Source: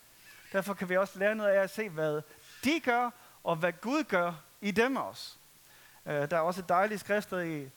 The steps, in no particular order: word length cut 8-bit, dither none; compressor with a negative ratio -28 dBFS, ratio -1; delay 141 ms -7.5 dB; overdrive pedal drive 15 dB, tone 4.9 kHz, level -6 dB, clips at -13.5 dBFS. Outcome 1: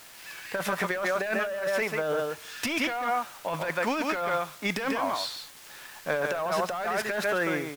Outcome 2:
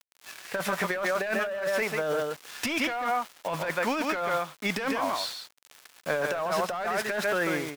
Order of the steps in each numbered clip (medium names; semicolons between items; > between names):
delay > overdrive pedal > compressor with a negative ratio > word length cut; word length cut > delay > overdrive pedal > compressor with a negative ratio